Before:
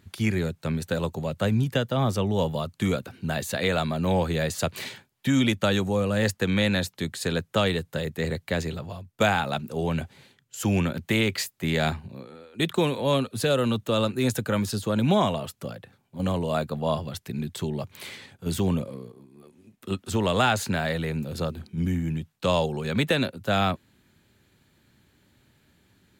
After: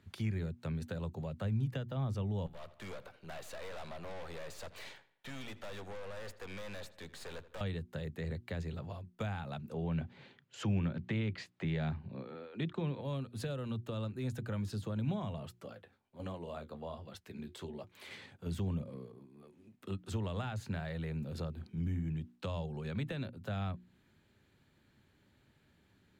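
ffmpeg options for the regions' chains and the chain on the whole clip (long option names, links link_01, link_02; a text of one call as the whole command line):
ffmpeg -i in.wav -filter_complex "[0:a]asettb=1/sr,asplit=3[link_01][link_02][link_03];[link_01]atrim=end=2.464[link_04];[link_02]atrim=start=2.46:end=7.61,asetpts=PTS-STARTPTS,afade=type=in:duration=0.004:curve=qsin,afade=type=out:start_time=5.146:duration=0.004:curve=qsin,lowshelf=frequency=400:width_type=q:width=1.5:gain=-9.5,aeval=exprs='(tanh(63.1*val(0)+0.75)-tanh(0.75))/63.1':channel_layout=same,asplit=2[link_05][link_06];[link_06]adelay=82,lowpass=frequency=4100:poles=1,volume=-17.5dB,asplit=2[link_07][link_08];[link_08]adelay=82,lowpass=frequency=4100:poles=1,volume=0.5,asplit=2[link_09][link_10];[link_10]adelay=82,lowpass=frequency=4100:poles=1,volume=0.5,asplit=2[link_11][link_12];[link_12]adelay=82,lowpass=frequency=4100:poles=1,volume=0.5[link_13];[link_05][link_07][link_09][link_11][link_13]amix=inputs=5:normalize=0,atrim=end_sample=227115[link_14];[link_03]atrim=start=7.606[link_15];[link_04][link_14]acrossfade=duration=0.004:curve1=hsin:curve2=qsin[link_16];[link_16][link_15]acrossfade=duration=0.004:curve1=qsin:curve2=hsin,asettb=1/sr,asplit=3[link_17][link_18][link_19];[link_17]atrim=end=9.744[link_20];[link_18]atrim=start=9.74:end=13.01,asetpts=PTS-STARTPTS,afade=type=in:duration=0.004:curve=qsin,afade=type=out:start_time=3.266:duration=0.004:curve=qsin,acontrast=46,highpass=120,lowpass=4100[link_21];[link_19]atrim=start=13.006[link_22];[link_20][link_21]acrossfade=duration=0.004:curve1=hsin:curve2=qsin[link_23];[link_23][link_22]acrossfade=duration=0.004:curve1=qsin:curve2=hsin,asettb=1/sr,asplit=3[link_24][link_25][link_26];[link_24]atrim=end=15.594[link_27];[link_25]atrim=start=15.59:end=18.11,asetpts=PTS-STARTPTS,afade=type=in:duration=0.004:curve=qsin,afade=type=out:start_time=2.516:duration=0.004:curve=qsin,equalizer=frequency=140:width_type=o:width=0.62:gain=-13,flanger=delay=5.8:depth=8.8:regen=-45:speed=1.3:shape=sinusoidal[link_28];[link_26]atrim=start=18.106[link_29];[link_27][link_28]acrossfade=duration=0.004:curve1=hsin:curve2=qsin[link_30];[link_30][link_29]acrossfade=duration=0.004:curve1=qsin:curve2=hsin,highshelf=frequency=5500:gain=-10.5,bandreject=frequency=60:width_type=h:width=6,bandreject=frequency=120:width_type=h:width=6,bandreject=frequency=180:width_type=h:width=6,bandreject=frequency=240:width_type=h:width=6,bandreject=frequency=300:width_type=h:width=6,bandreject=frequency=360:width_type=h:width=6,acrossover=split=150[link_31][link_32];[link_32]acompressor=threshold=-37dB:ratio=4[link_33];[link_31][link_33]amix=inputs=2:normalize=0,volume=-5.5dB" out.wav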